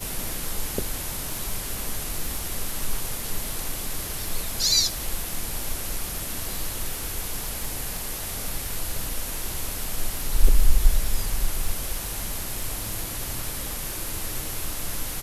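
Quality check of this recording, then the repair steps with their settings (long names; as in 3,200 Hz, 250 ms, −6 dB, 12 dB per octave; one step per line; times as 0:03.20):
surface crackle 47 per second −29 dBFS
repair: click removal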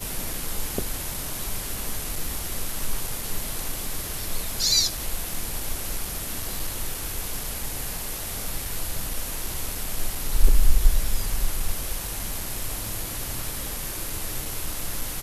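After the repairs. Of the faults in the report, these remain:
none of them is left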